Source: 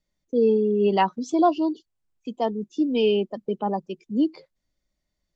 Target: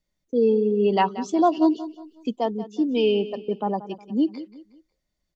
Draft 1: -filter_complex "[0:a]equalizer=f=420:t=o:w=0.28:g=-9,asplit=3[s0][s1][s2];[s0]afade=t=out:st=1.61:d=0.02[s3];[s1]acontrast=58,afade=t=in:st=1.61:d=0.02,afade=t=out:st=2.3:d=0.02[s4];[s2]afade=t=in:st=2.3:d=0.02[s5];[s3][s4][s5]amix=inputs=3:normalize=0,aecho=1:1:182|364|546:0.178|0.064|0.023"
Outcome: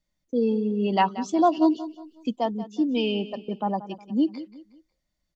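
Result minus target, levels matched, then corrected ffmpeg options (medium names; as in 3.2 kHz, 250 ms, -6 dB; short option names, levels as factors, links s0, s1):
500 Hz band -3.0 dB
-filter_complex "[0:a]asplit=3[s0][s1][s2];[s0]afade=t=out:st=1.61:d=0.02[s3];[s1]acontrast=58,afade=t=in:st=1.61:d=0.02,afade=t=out:st=2.3:d=0.02[s4];[s2]afade=t=in:st=2.3:d=0.02[s5];[s3][s4][s5]amix=inputs=3:normalize=0,aecho=1:1:182|364|546:0.178|0.064|0.023"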